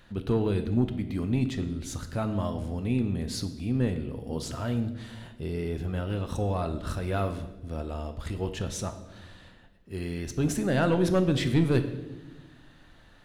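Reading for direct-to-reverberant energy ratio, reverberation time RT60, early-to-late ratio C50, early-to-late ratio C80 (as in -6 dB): 8.0 dB, 1.1 s, 11.0 dB, 13.0 dB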